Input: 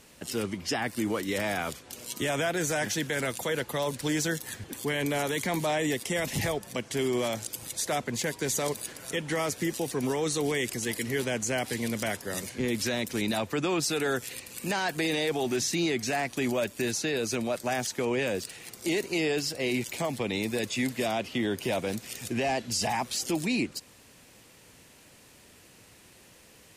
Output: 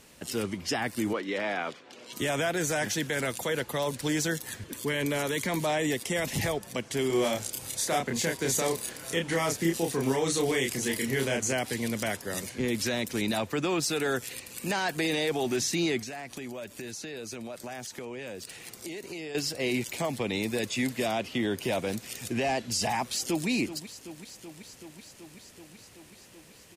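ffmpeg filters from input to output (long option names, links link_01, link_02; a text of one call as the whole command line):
ffmpeg -i in.wav -filter_complex "[0:a]asettb=1/sr,asplit=3[link_01][link_02][link_03];[link_01]atrim=end=1.134[link_04];[link_02]atrim=start=1.13:end=2.13,asetpts=PTS-STARTPTS,afade=type=in:duration=0.004:curve=qsin,afade=type=out:start_time=0.996:duration=0.004:curve=qsin,highpass=250,lowpass=3600[link_05];[link_03]atrim=start=2.126[link_06];[link_04][link_05]acrossfade=duration=0.004:curve1=hsin:curve2=qsin[link_07];[link_07][link_06]acrossfade=duration=0.004:curve1=qsin:curve2=hsin,asettb=1/sr,asplit=3[link_08][link_09][link_10];[link_08]atrim=end=4.614[link_11];[link_09]atrim=start=4.61:end=5.62,asetpts=PTS-STARTPTS,afade=type=in:duration=0.004:curve=qsin,afade=type=out:start_time=1.006:duration=0.004:curve=qsin,asuperstop=centerf=770:order=4:qfactor=5.2[link_12];[link_10]atrim=start=5.616[link_13];[link_11][link_12]acrossfade=duration=0.004:curve1=hsin:curve2=qsin[link_14];[link_14][link_13]acrossfade=duration=0.004:curve1=qsin:curve2=hsin,asettb=1/sr,asplit=3[link_15][link_16][link_17];[link_15]atrim=end=7.074[link_18];[link_16]atrim=start=7.07:end=11.53,asetpts=PTS-STARTPTS,afade=type=in:duration=0.004:curve=qsin,afade=type=out:start_time=4.456:duration=0.004:curve=qsin,asplit=2[link_19][link_20];[link_20]adelay=30,volume=-3dB[link_21];[link_19][link_21]amix=inputs=2:normalize=0,atrim=end_sample=196686[link_22];[link_17]atrim=start=11.526[link_23];[link_18][link_22]acrossfade=duration=0.004:curve1=hsin:curve2=qsin[link_24];[link_24][link_23]acrossfade=duration=0.004:curve1=qsin:curve2=hsin,asettb=1/sr,asplit=3[link_25][link_26][link_27];[link_25]atrim=end=13.524[link_28];[link_26]atrim=start=13.52:end=14.14,asetpts=PTS-STARTPTS,afade=type=in:duration=0.004:curve=qsin,afade=type=out:start_time=0.616:duration=0.004:curve=qsin,aeval=exprs='sgn(val(0))*max(abs(val(0))-0.00188,0)':channel_layout=same[link_29];[link_27]atrim=start=14.136[link_30];[link_28][link_29]acrossfade=duration=0.004:curve1=hsin:curve2=qsin[link_31];[link_31][link_30]acrossfade=duration=0.004:curve1=qsin:curve2=hsin,asettb=1/sr,asplit=3[link_32][link_33][link_34];[link_32]atrim=end=15.994[link_35];[link_33]atrim=start=15.99:end=19.35,asetpts=PTS-STARTPTS,afade=type=in:duration=0.004:curve=qsin,afade=type=out:start_time=3.356:duration=0.004:curve=qsin,acompressor=threshold=-36dB:ratio=6:attack=3.2:release=140:knee=1:detection=peak[link_36];[link_34]atrim=start=19.346[link_37];[link_35][link_36]acrossfade=duration=0.004:curve1=hsin:curve2=qsin[link_38];[link_38][link_37]acrossfade=duration=0.004:curve1=qsin:curve2=hsin,asplit=2[link_39][link_40];[link_40]afade=type=in:start_time=23.06:duration=0.01,afade=type=out:start_time=23.48:duration=0.01,aecho=0:1:380|760|1140|1520|1900|2280|2660|3040|3420|3800|4180|4560:0.237137|0.18971|0.151768|0.121414|0.0971315|0.0777052|0.0621641|0.0497313|0.039785|0.031828|0.0254624|0.0203699[link_41];[link_39][link_41]amix=inputs=2:normalize=0" out.wav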